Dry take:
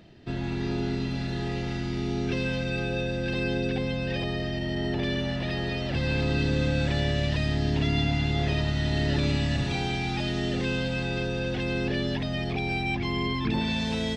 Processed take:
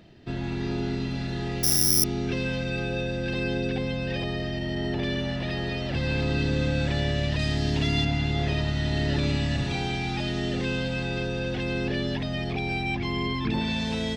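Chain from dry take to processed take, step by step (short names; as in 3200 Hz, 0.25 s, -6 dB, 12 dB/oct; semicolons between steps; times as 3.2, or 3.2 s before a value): 1.63–2.04 careless resampling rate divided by 8×, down filtered, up zero stuff; 7.39–8.05 high shelf 4200 Hz +9 dB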